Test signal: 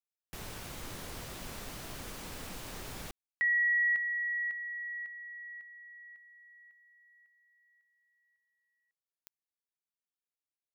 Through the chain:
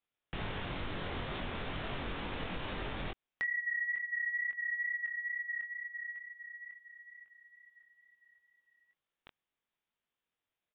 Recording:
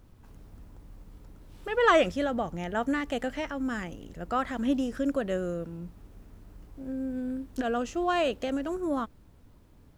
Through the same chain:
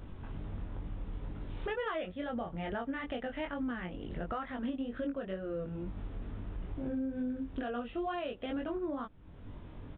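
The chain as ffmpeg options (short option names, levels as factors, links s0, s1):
-af "acontrast=88,flanger=delay=20:depth=2.6:speed=2.2,aresample=8000,aresample=44100,acompressor=threshold=0.0158:ratio=16:attack=1.6:release=380:knee=6:detection=rms,volume=1.88"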